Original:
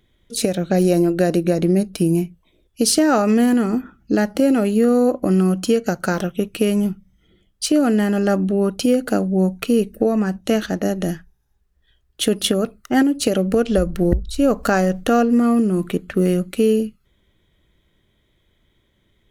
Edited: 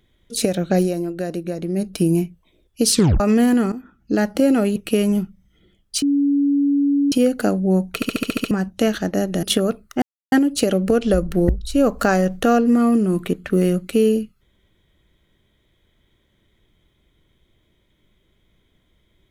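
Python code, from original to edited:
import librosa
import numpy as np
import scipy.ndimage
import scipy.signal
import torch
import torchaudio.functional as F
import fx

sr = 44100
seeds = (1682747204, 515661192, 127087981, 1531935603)

y = fx.edit(x, sr, fx.fade_down_up(start_s=0.79, length_s=1.07, db=-8.5, fade_s=0.19, curve='qua'),
    fx.tape_stop(start_s=2.92, length_s=0.28),
    fx.fade_in_from(start_s=3.72, length_s=0.54, floor_db=-14.0),
    fx.cut(start_s=4.76, length_s=1.68),
    fx.bleep(start_s=7.7, length_s=1.1, hz=283.0, db=-14.0),
    fx.stutter_over(start_s=9.63, slice_s=0.07, count=8),
    fx.cut(start_s=11.11, length_s=1.26),
    fx.insert_silence(at_s=12.96, length_s=0.3), tone=tone)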